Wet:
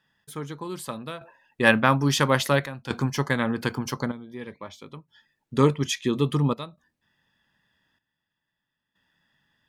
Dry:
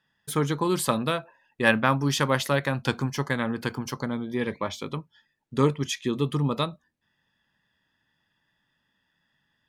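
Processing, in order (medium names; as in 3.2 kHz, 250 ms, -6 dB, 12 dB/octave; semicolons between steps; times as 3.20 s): trance gate "x....xxxxxx.xxxx" 62 bpm -12 dB; trim +2.5 dB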